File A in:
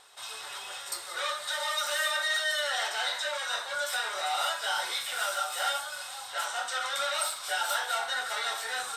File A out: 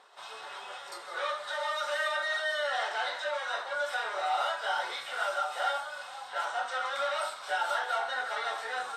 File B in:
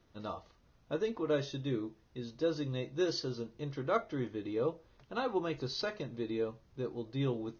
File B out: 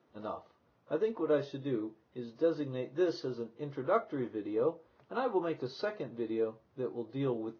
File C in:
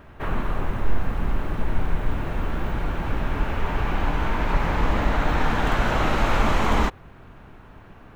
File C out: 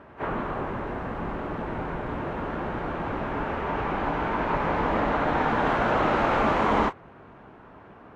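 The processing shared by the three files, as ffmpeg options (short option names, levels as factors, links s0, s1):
-af "bandpass=f=600:t=q:w=0.51:csg=0,volume=1.41" -ar 44100 -c:a libvorbis -b:a 32k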